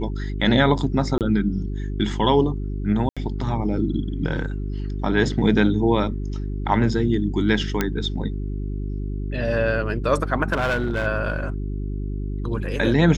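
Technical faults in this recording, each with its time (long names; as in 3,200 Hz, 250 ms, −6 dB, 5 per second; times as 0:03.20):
mains hum 50 Hz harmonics 8 −27 dBFS
0:01.18–0:01.21: drop-out 28 ms
0:03.09–0:03.17: drop-out 76 ms
0:07.81: click −6 dBFS
0:10.52–0:11.07: clipping −18 dBFS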